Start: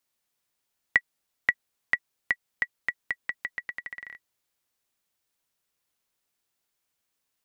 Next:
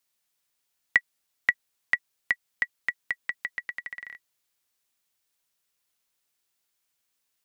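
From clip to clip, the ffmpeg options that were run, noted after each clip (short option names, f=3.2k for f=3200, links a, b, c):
-af "tiltshelf=f=1.4k:g=-3"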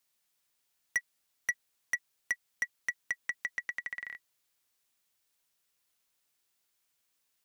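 -af "asoftclip=type=tanh:threshold=-23.5dB"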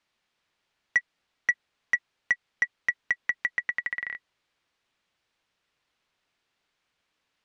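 -af "lowpass=3.2k,volume=8.5dB"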